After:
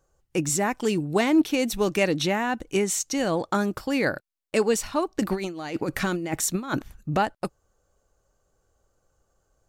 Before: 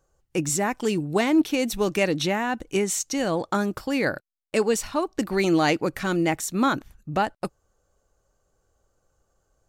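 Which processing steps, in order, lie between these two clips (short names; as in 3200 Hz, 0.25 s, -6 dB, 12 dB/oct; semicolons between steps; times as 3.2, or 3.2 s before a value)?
5.2–7.17 negative-ratio compressor -26 dBFS, ratio -0.5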